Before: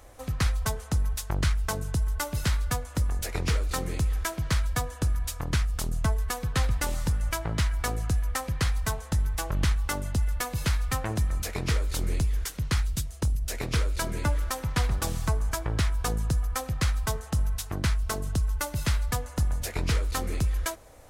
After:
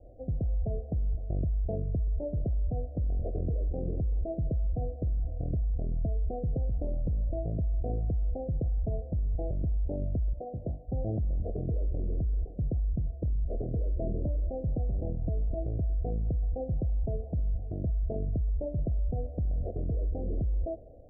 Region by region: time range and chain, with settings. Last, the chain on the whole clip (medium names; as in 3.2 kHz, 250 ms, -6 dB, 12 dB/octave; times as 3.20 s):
10.33–10.92 s: tilt EQ +3 dB/octave + hum notches 50/100/150/200/250/300/350 Hz
whole clip: steep low-pass 710 Hz 96 dB/octave; level rider gain up to 4 dB; peak limiter -24 dBFS